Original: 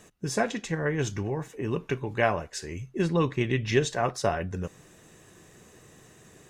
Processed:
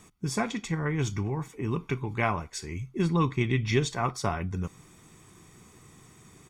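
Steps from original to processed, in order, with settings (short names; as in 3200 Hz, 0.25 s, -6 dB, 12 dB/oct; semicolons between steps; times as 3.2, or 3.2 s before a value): comb 0.9 ms, depth 60%; gain -1.5 dB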